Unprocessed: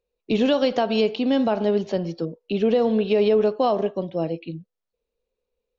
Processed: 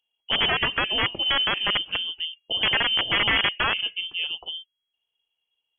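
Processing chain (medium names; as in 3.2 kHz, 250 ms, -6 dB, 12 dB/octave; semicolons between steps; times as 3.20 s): integer overflow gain 13 dB; dynamic bell 500 Hz, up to -6 dB, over -35 dBFS, Q 0.76; frequency inversion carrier 3.3 kHz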